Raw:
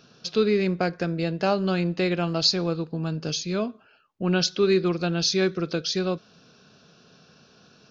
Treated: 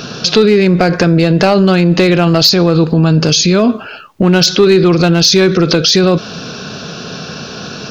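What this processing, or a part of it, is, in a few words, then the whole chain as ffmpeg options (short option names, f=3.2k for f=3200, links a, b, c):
loud club master: -af "acompressor=threshold=-25dB:ratio=2.5,asoftclip=type=hard:threshold=-20dB,alimiter=level_in=30.5dB:limit=-1dB:release=50:level=0:latency=1,volume=-1dB"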